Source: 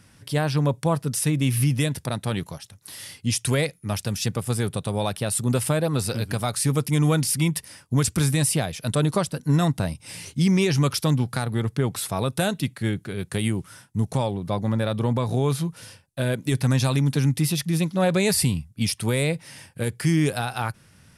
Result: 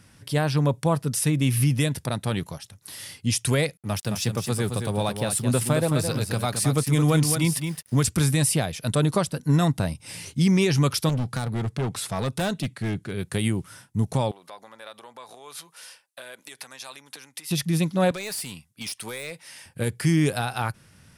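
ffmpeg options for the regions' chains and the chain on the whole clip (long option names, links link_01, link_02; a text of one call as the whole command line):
ffmpeg -i in.wav -filter_complex "[0:a]asettb=1/sr,asplit=3[link_01][link_02][link_03];[link_01]atrim=end=3.774[link_04];[link_02]atrim=start=3.77:end=8.07,asetpts=PTS-STARTPTS,afade=type=in:duration=0.004:curve=qsin,afade=type=out:start_time=4.296:duration=0.004:curve=qsin,highpass=frequency=79:width=0.5412,highpass=frequency=79:width=1.3066,aeval=exprs='sgn(val(0))*max(abs(val(0))-0.00473,0)':channel_layout=same,aecho=1:1:217:0.447,atrim=end_sample=189630[link_05];[link_03]atrim=start=8.066[link_06];[link_04][link_05]acrossfade=duration=0.004:curve1=hsin:curve2=qsin[link_07];[link_07][link_06]acrossfade=duration=0.004:curve1=qsin:curve2=hsin,asettb=1/sr,asplit=3[link_08][link_09][link_10];[link_08]atrim=end=11.094[link_11];[link_09]atrim=start=11.09:end=13.14,asetpts=PTS-STARTPTS,afade=type=in:duration=0.004:curve=qsin,afade=type=out:start_time=2.046:duration=0.004:curve=qsin,lowpass=9700,volume=22dB,asoftclip=hard,volume=-22dB[link_12];[link_10]atrim=start=13.136[link_13];[link_11][link_12]acrossfade=duration=0.004:curve1=hsin:curve2=qsin[link_14];[link_14][link_13]acrossfade=duration=0.004:curve1=qsin:curve2=hsin,asettb=1/sr,asplit=3[link_15][link_16][link_17];[link_15]atrim=end=14.314[link_18];[link_16]atrim=start=14.31:end=17.51,asetpts=PTS-STARTPTS,afade=type=in:duration=0.004:curve=qsin,afade=type=out:start_time=3.196:duration=0.004:curve=qsin,acompressor=threshold=-28dB:ratio=12:attack=3.2:release=140:knee=1:detection=peak,highpass=800[link_19];[link_17]atrim=start=17.506[link_20];[link_18][link_19]acrossfade=duration=0.004:curve1=hsin:curve2=qsin[link_21];[link_21][link_20]acrossfade=duration=0.004:curve1=qsin:curve2=hsin,asettb=1/sr,asplit=3[link_22][link_23][link_24];[link_22]atrim=end=18.114[link_25];[link_23]atrim=start=18.11:end=19.66,asetpts=PTS-STARTPTS,afade=type=in:duration=0.004:curve=qsin,afade=type=out:start_time=1.546:duration=0.004:curve=qsin,highpass=frequency=960:poles=1,acompressor=threshold=-28dB:ratio=2.5:attack=3.2:release=140:knee=1:detection=peak,asoftclip=type=hard:threshold=-27.5dB[link_26];[link_24]atrim=start=19.656[link_27];[link_25][link_26]acrossfade=duration=0.004:curve1=hsin:curve2=qsin[link_28];[link_28][link_27]acrossfade=duration=0.004:curve1=qsin:curve2=hsin" out.wav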